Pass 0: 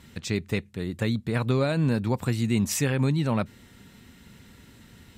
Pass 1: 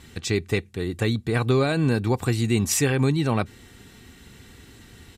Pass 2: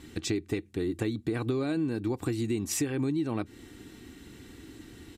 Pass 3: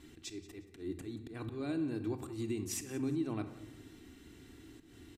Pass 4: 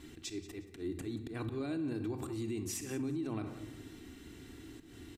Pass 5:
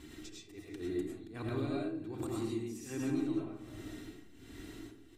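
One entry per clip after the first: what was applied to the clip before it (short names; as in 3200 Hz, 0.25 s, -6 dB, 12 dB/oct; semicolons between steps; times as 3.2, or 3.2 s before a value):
LPF 12000 Hz 12 dB/oct; high shelf 9400 Hz +5 dB; comb 2.6 ms, depth 41%; gain +3.5 dB
bell 310 Hz +14.5 dB 0.47 oct; compressor 6:1, threshold -23 dBFS, peak gain reduction 12.5 dB; gain -4 dB
auto swell 0.151 s; feedback echo 0.179 s, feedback 31%, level -17.5 dB; on a send at -7.5 dB: reverb RT60 0.85 s, pre-delay 3 ms; on the sum: gain -8 dB
limiter -34 dBFS, peak gain reduction 9 dB; gain +4 dB
tremolo 1.3 Hz, depth 88%; digital reverb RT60 0.56 s, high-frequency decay 0.4×, pre-delay 65 ms, DRR -3.5 dB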